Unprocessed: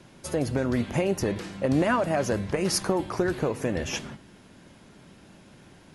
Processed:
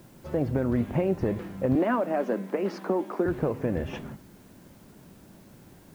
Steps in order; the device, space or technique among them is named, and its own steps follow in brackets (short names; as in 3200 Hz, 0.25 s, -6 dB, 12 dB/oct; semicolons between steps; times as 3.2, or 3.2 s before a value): 1.75–3.26 steep high-pass 200 Hz 48 dB/oct; cassette deck with a dirty head (tape spacing loss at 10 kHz 43 dB; wow and flutter; white noise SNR 33 dB); gain +1.5 dB